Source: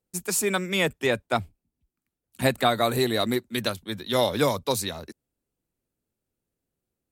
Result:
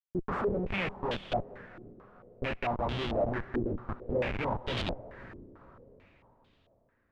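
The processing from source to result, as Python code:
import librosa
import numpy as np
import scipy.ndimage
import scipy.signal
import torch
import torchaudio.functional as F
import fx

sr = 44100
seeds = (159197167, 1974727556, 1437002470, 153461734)

y = fx.rider(x, sr, range_db=3, speed_s=0.5)
y = fx.comb_fb(y, sr, f0_hz=60.0, decay_s=0.25, harmonics='all', damping=0.0, mix_pct=80)
y = fx.schmitt(y, sr, flips_db=-29.5)
y = fx.echo_diffused(y, sr, ms=481, feedback_pct=43, wet_db=-15)
y = fx.filter_held_lowpass(y, sr, hz=4.5, low_hz=350.0, high_hz=3300.0)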